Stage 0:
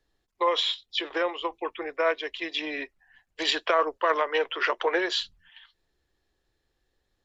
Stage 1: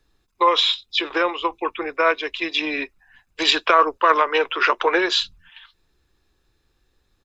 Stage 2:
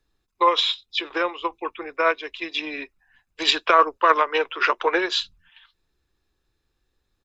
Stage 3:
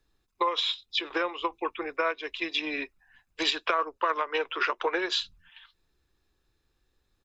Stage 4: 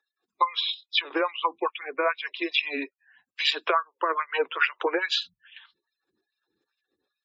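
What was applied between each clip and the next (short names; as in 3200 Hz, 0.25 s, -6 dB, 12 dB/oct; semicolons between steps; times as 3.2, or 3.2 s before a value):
comb 0.8 ms, depth 39%; gain +7.5 dB
upward expander 1.5:1, over -26 dBFS
compressor 4:1, threshold -25 dBFS, peak gain reduction 12.5 dB
spectral gate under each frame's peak -25 dB strong; LFO high-pass sine 2.4 Hz 210–2700 Hz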